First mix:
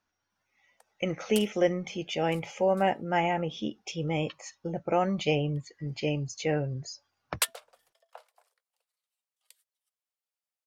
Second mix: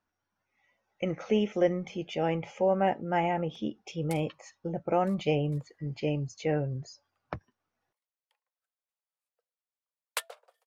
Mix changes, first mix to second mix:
background: entry +2.75 s; master: add high shelf 2400 Hz -9.5 dB

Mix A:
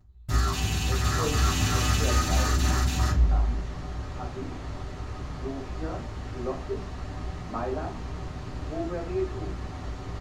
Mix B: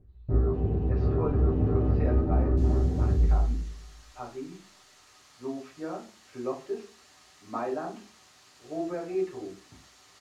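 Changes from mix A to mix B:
first sound: add synth low-pass 450 Hz, resonance Q 3.6; second sound: add differentiator

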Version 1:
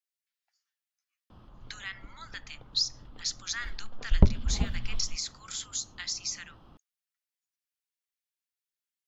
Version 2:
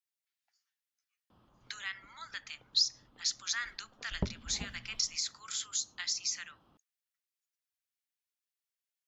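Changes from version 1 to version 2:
background -8.5 dB; master: add HPF 160 Hz 6 dB/oct

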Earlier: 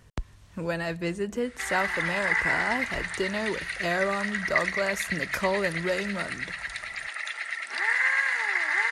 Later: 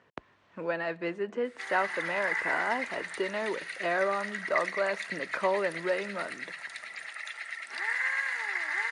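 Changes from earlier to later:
speech: add BPF 340–2400 Hz; background -6.0 dB

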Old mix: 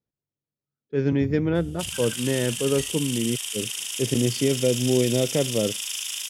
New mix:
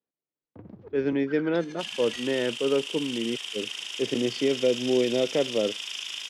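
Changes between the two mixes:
first sound: entry -0.65 s; second sound: remove HPF 530 Hz 6 dB/oct; master: add three-band isolator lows -21 dB, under 230 Hz, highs -23 dB, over 5100 Hz

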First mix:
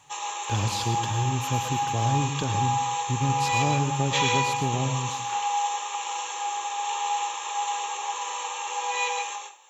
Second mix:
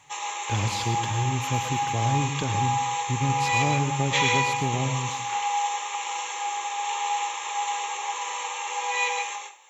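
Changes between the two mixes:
speech: add high shelf 7100 Hz -5 dB; master: add bell 2100 Hz +10.5 dB 0.24 oct

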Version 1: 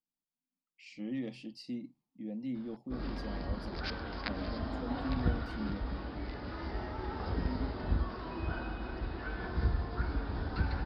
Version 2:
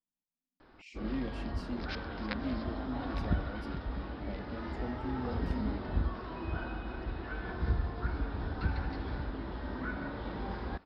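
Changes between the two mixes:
background: entry -1.95 s; master: add bell 4700 Hz -7.5 dB 0.22 oct

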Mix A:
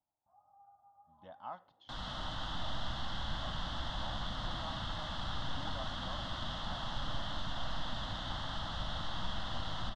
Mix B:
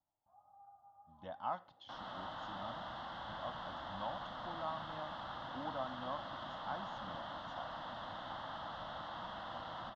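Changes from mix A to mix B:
speech +5.5 dB; first sound: send +8.5 dB; second sound: add band-pass 750 Hz, Q 0.74

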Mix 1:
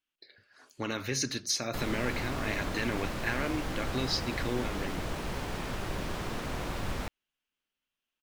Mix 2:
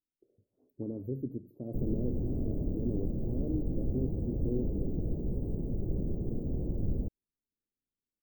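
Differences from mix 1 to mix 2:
background: add low shelf 330 Hz +5 dB; master: add inverse Chebyshev band-stop 1700–8700 Hz, stop band 70 dB

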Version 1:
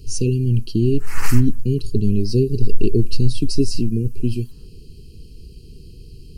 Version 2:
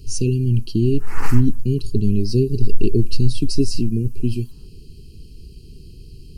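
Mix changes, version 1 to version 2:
background: add tilt shelf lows +9.5 dB, about 1300 Hz; master: add bell 490 Hz -6.5 dB 0.24 oct

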